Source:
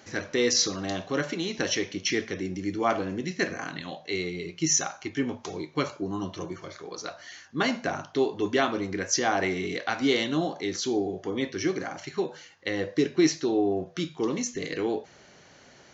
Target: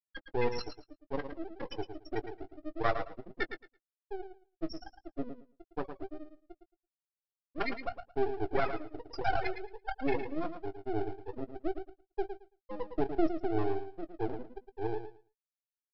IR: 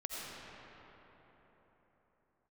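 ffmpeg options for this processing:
-filter_complex "[0:a]afftfilt=real='re*gte(hypot(re,im),0.251)':imag='im*gte(hypot(re,im),0.251)':win_size=1024:overlap=0.75,equalizer=f=180:t=o:w=1.4:g=-14.5,aresample=11025,aeval=exprs='max(val(0),0)':c=same,aresample=44100,asplit=2[a][b];[b]adelay=18,volume=-13dB[c];[a][c]amix=inputs=2:normalize=0,aecho=1:1:111|222|333:0.355|0.0603|0.0103,volume=3dB"

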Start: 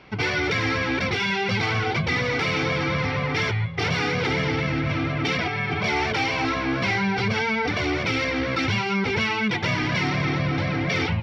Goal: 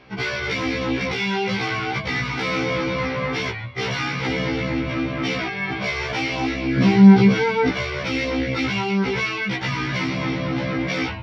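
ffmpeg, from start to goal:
-filter_complex "[0:a]asettb=1/sr,asplit=3[a][b][c];[a]atrim=end=6.774[d];[b]atrim=start=6.77:end=7.7,asetpts=PTS-STARTPTS,afade=t=in:d=0.004:c=qsin,afade=t=out:st=0.926:d=0.004:c=qsin,equalizer=f=220:t=o:w=1.8:g=13.5[e];[c]atrim=start=7.696[f];[d][e]acrossfade=d=0.004:c1=hsin:c2=qsin[g];[g][f]acrossfade=d=0.004:c1=qsin:c2=hsin,afftfilt=real='re*1.73*eq(mod(b,3),0)':imag='im*1.73*eq(mod(b,3),0)':win_size=2048:overlap=0.75,volume=2dB"

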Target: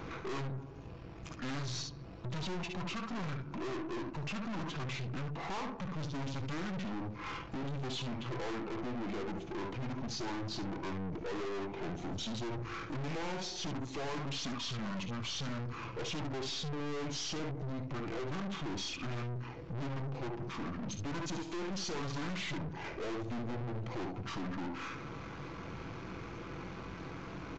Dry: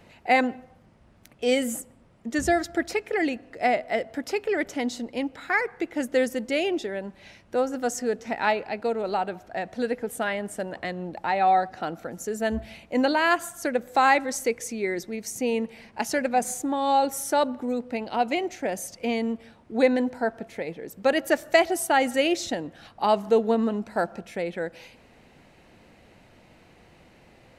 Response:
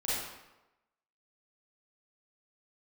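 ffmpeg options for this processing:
-af "highpass=f=88:w=0.5412,highpass=f=88:w=1.3066,equalizer=f=4.7k:w=3.8:g=5,aecho=1:1:3.2:0.33,acompressor=threshold=-45dB:ratio=2,asetrate=23361,aresample=44100,atempo=1.88775,aecho=1:1:21|57|72:0.224|0.188|0.299,aeval=exprs='(tanh(355*val(0)+0.5)-tanh(0.5))/355':c=same,aresample=16000,aresample=44100,volume=13.5dB"

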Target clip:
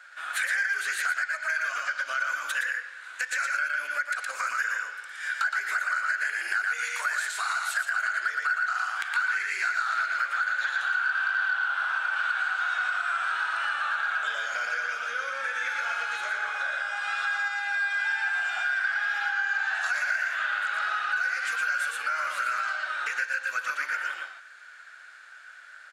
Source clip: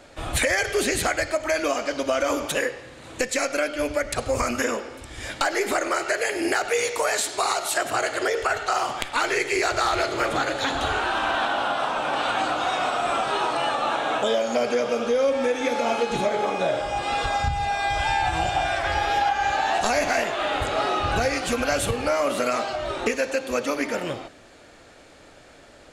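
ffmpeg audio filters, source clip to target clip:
-filter_complex "[0:a]highpass=f=1.5k:t=q:w=11,asplit=2[a][b];[b]aecho=0:1:116:0.668[c];[a][c]amix=inputs=2:normalize=0,acompressor=threshold=-18dB:ratio=3,asoftclip=type=tanh:threshold=-9dB,volume=-7.5dB"

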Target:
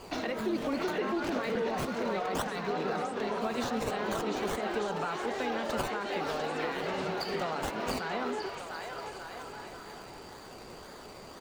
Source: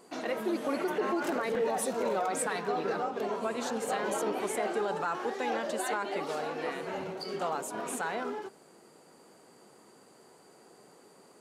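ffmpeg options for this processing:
-filter_complex "[0:a]aemphasis=mode=production:type=75kf,acrossover=split=250[a][b];[b]acompressor=threshold=-38dB:ratio=6[c];[a][c]amix=inputs=2:normalize=0,acrossover=split=440|5300[d][e][f];[e]aecho=1:1:700|1190|1533|1773|1941:0.631|0.398|0.251|0.158|0.1[g];[f]acrusher=samples=22:mix=1:aa=0.000001:lfo=1:lforange=13.2:lforate=1.9[h];[d][g][h]amix=inputs=3:normalize=0,volume=5.5dB"

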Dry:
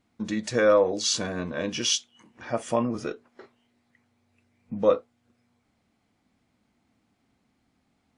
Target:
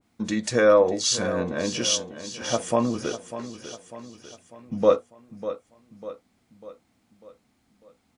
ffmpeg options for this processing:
-af "highshelf=f=6.1k:g=8.5,aecho=1:1:597|1194|1791|2388|2985:0.237|0.119|0.0593|0.0296|0.0148,adynamicequalizer=threshold=0.00794:dfrequency=1800:dqfactor=0.7:tfrequency=1800:tqfactor=0.7:attack=5:release=100:ratio=0.375:range=2.5:mode=cutabove:tftype=highshelf,volume=2.5dB"

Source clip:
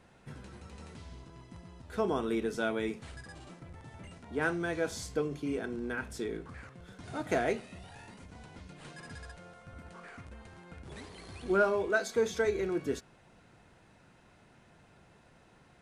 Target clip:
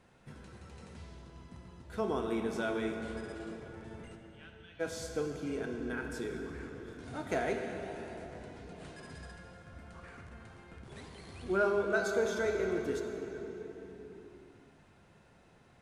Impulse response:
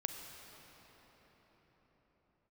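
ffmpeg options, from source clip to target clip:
-filter_complex "[0:a]asplit=3[a][b][c];[a]afade=t=out:st=4.15:d=0.02[d];[b]bandpass=f=3k:t=q:w=7.6:csg=0,afade=t=in:st=4.15:d=0.02,afade=t=out:st=4.79:d=0.02[e];[c]afade=t=in:st=4.79:d=0.02[f];[d][e][f]amix=inputs=3:normalize=0[g];[1:a]atrim=start_sample=2205,asetrate=57330,aresample=44100[h];[g][h]afir=irnorm=-1:irlink=0"

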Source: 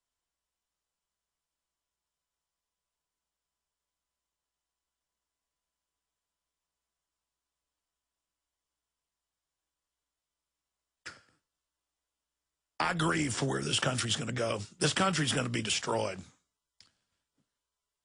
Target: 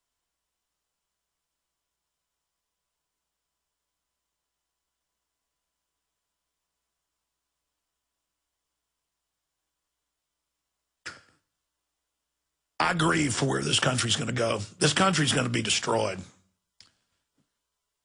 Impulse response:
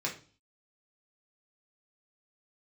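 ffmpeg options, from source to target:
-filter_complex "[0:a]asplit=2[a][b];[1:a]atrim=start_sample=2205,asetrate=27783,aresample=44100[c];[b][c]afir=irnorm=-1:irlink=0,volume=-26dB[d];[a][d]amix=inputs=2:normalize=0,volume=5dB"

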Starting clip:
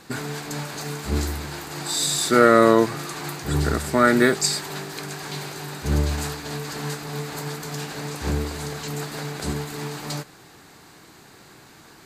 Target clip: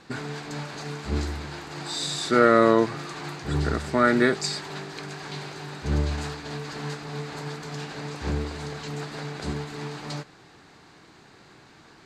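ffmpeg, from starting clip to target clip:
-af "lowpass=5.3k,volume=-3dB"

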